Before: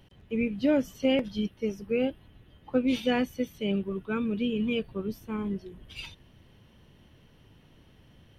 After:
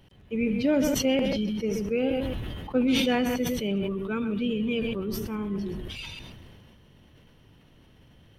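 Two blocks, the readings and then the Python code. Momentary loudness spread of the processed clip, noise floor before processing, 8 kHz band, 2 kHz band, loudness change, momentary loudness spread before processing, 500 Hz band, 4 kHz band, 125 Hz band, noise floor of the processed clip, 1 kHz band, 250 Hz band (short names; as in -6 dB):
12 LU, -59 dBFS, n/a, +3.0 dB, +2.0 dB, 10 LU, +2.0 dB, +5.0 dB, +4.5 dB, -57 dBFS, +3.0 dB, +2.5 dB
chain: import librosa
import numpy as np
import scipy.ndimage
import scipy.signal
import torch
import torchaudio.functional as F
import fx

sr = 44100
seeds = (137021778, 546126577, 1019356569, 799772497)

p1 = fx.reverse_delay(x, sr, ms=105, wet_db=-12.5)
p2 = p1 + fx.echo_single(p1, sr, ms=130, db=-15.0, dry=0)
y = fx.sustainer(p2, sr, db_per_s=23.0)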